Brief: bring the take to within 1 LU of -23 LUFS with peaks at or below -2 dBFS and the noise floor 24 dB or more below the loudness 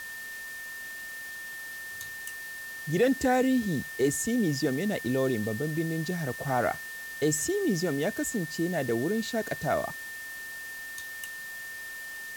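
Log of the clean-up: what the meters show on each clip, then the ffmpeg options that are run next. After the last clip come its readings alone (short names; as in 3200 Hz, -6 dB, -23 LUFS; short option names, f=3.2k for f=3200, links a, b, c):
steady tone 1800 Hz; tone level -38 dBFS; noise floor -40 dBFS; noise floor target -55 dBFS; loudness -30.5 LUFS; peak -13.5 dBFS; loudness target -23.0 LUFS
-> -af "bandreject=f=1.8k:w=30"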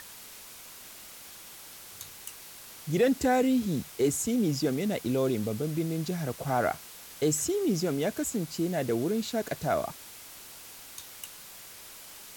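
steady tone none; noise floor -47 dBFS; noise floor target -53 dBFS
-> -af "afftdn=nr=6:nf=-47"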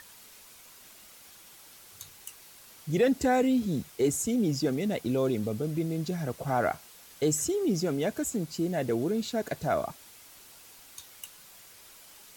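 noise floor -53 dBFS; loudness -29.0 LUFS; peak -14.0 dBFS; loudness target -23.0 LUFS
-> -af "volume=6dB"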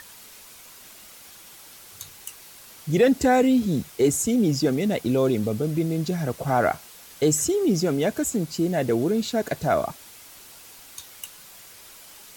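loudness -23.0 LUFS; peak -8.0 dBFS; noise floor -47 dBFS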